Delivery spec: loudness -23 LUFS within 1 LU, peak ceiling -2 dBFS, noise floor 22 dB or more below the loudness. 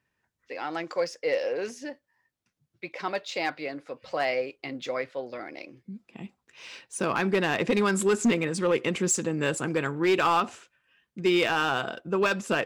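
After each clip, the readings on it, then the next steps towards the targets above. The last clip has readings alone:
clipped 0.5%; flat tops at -17.0 dBFS; loudness -27.5 LUFS; peak -17.0 dBFS; loudness target -23.0 LUFS
-> clip repair -17 dBFS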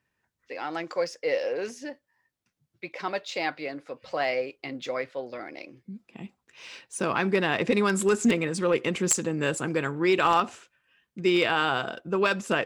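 clipped 0.0%; loudness -27.0 LUFS; peak -8.0 dBFS; loudness target -23.0 LUFS
-> gain +4 dB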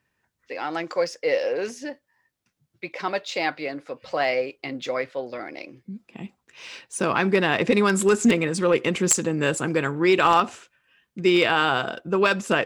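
loudness -23.0 LUFS; peak -4.0 dBFS; noise floor -78 dBFS

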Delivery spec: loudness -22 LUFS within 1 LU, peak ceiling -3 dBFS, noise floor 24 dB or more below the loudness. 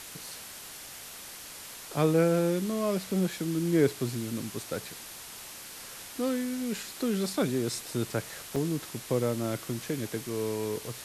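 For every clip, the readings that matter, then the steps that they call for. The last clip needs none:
dropouts 1; longest dropout 4.3 ms; noise floor -45 dBFS; noise floor target -55 dBFS; loudness -30.5 LUFS; peak -12.5 dBFS; loudness target -22.0 LUFS
-> interpolate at 8.56, 4.3 ms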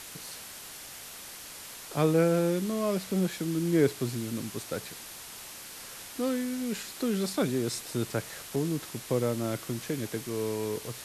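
dropouts 0; noise floor -45 dBFS; noise floor target -55 dBFS
-> denoiser 10 dB, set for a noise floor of -45 dBFS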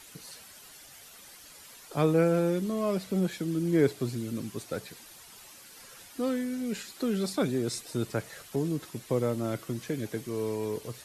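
noise floor -51 dBFS; noise floor target -55 dBFS
-> denoiser 6 dB, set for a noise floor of -51 dBFS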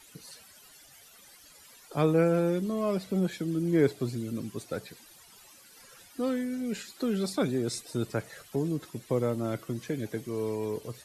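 noise floor -55 dBFS; loudness -30.5 LUFS; peak -13.0 dBFS; loudness target -22.0 LUFS
-> gain +8.5 dB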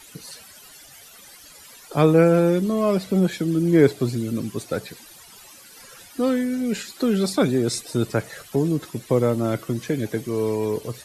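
loudness -22.0 LUFS; peak -4.5 dBFS; noise floor -47 dBFS

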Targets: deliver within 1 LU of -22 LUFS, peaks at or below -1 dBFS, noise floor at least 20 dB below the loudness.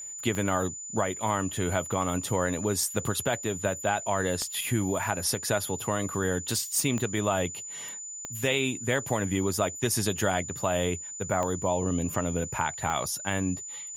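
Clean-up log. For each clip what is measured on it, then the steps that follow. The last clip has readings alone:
clicks 6; steady tone 7000 Hz; tone level -37 dBFS; loudness -28.5 LUFS; peak -11.5 dBFS; loudness target -22.0 LUFS
-> de-click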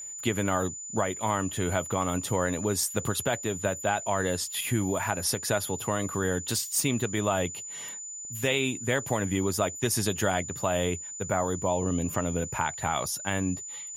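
clicks 0; steady tone 7000 Hz; tone level -37 dBFS
-> notch 7000 Hz, Q 30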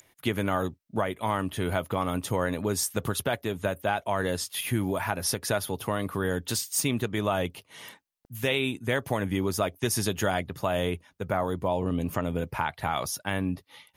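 steady tone none; loudness -29.0 LUFS; peak -11.5 dBFS; loudness target -22.0 LUFS
-> gain +7 dB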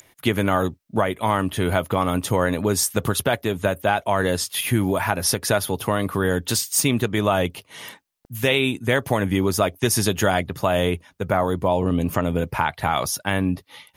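loudness -22.0 LUFS; peak -4.5 dBFS; noise floor -62 dBFS

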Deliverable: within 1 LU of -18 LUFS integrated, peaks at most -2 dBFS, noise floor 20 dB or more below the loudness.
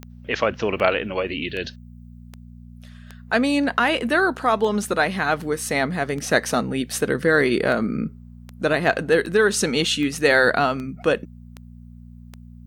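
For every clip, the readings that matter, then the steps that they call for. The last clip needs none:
clicks 17; hum 60 Hz; harmonics up to 240 Hz; hum level -39 dBFS; loudness -21.5 LUFS; peak -4.0 dBFS; loudness target -18.0 LUFS
-> de-click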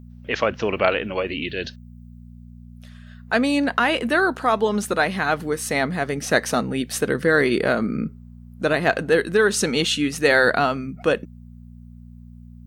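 clicks 0; hum 60 Hz; harmonics up to 240 Hz; hum level -39 dBFS
-> de-hum 60 Hz, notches 4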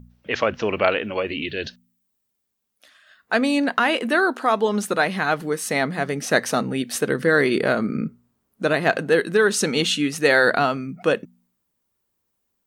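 hum none; loudness -21.5 LUFS; peak -4.0 dBFS; loudness target -18.0 LUFS
-> gain +3.5 dB; limiter -2 dBFS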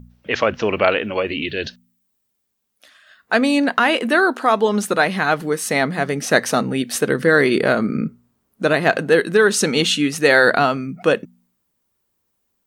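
loudness -18.0 LUFS; peak -2.0 dBFS; noise floor -72 dBFS

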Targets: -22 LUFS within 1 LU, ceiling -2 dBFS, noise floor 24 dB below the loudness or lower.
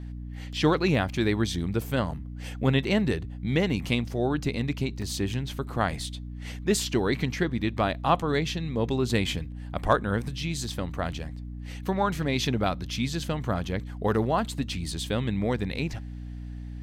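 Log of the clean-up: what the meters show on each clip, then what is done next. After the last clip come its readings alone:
dropouts 1; longest dropout 2.6 ms; hum 60 Hz; harmonics up to 300 Hz; hum level -35 dBFS; loudness -28.0 LUFS; peak -7.0 dBFS; loudness target -22.0 LUFS
-> interpolate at 5.02, 2.6 ms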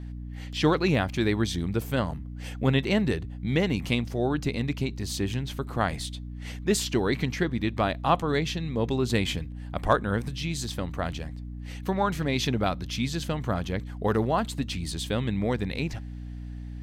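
dropouts 0; hum 60 Hz; harmonics up to 300 Hz; hum level -35 dBFS
-> de-hum 60 Hz, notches 5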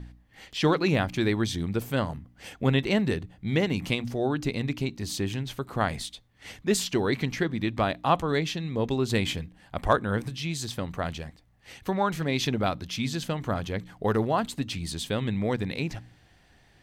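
hum none; loudness -28.5 LUFS; peak -7.0 dBFS; loudness target -22.0 LUFS
-> gain +6.5 dB; limiter -2 dBFS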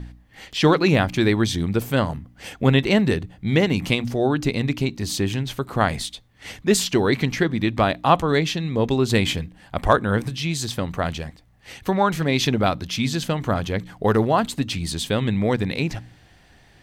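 loudness -22.0 LUFS; peak -2.0 dBFS; noise floor -53 dBFS

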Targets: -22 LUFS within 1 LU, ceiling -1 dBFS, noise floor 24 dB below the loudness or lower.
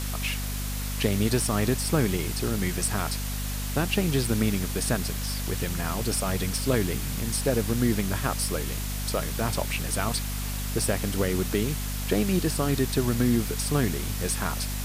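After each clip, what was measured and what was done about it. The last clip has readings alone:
hum 50 Hz; harmonics up to 250 Hz; hum level -29 dBFS; noise floor -31 dBFS; noise floor target -51 dBFS; loudness -27.0 LUFS; peak -8.5 dBFS; loudness target -22.0 LUFS
-> notches 50/100/150/200/250 Hz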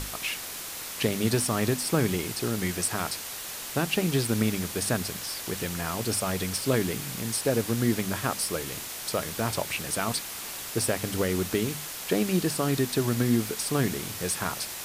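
hum none; noise floor -38 dBFS; noise floor target -52 dBFS
-> denoiser 14 dB, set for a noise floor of -38 dBFS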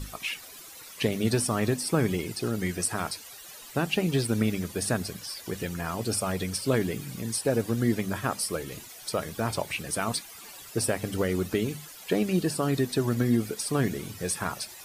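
noise floor -46 dBFS; noise floor target -53 dBFS
-> denoiser 7 dB, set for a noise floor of -46 dBFS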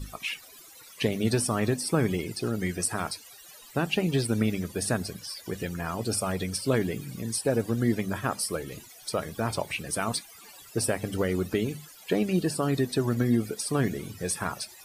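noise floor -50 dBFS; noise floor target -53 dBFS
-> denoiser 6 dB, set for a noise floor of -50 dBFS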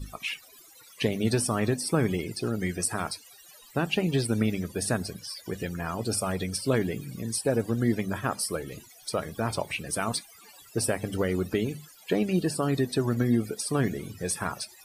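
noise floor -53 dBFS; loudness -29.0 LUFS; peak -10.5 dBFS; loudness target -22.0 LUFS
-> gain +7 dB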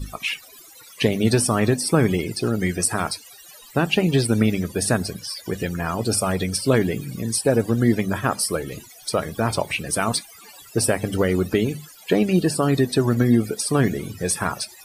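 loudness -22.0 LUFS; peak -3.5 dBFS; noise floor -46 dBFS

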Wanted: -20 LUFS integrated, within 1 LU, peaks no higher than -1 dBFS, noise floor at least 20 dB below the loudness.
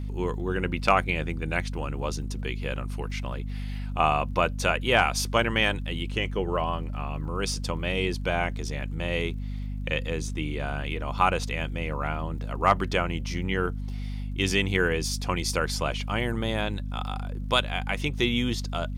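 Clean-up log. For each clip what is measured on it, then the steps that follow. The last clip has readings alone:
ticks 29/s; hum 50 Hz; harmonics up to 250 Hz; hum level -30 dBFS; loudness -28.0 LUFS; peak -6.5 dBFS; loudness target -20.0 LUFS
-> de-click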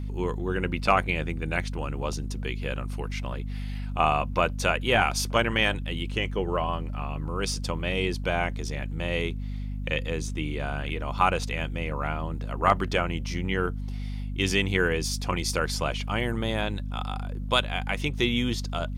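ticks 0.21/s; hum 50 Hz; harmonics up to 250 Hz; hum level -30 dBFS
-> de-hum 50 Hz, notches 5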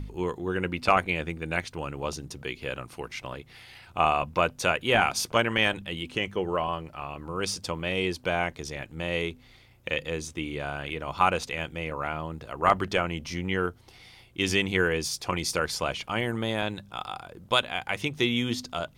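hum none; loudness -28.5 LUFS; peak -5.5 dBFS; loudness target -20.0 LUFS
-> gain +8.5 dB; limiter -1 dBFS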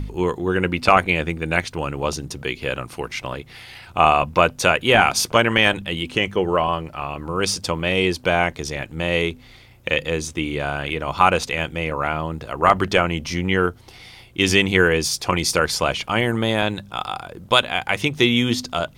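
loudness -20.5 LUFS; peak -1.0 dBFS; noise floor -46 dBFS

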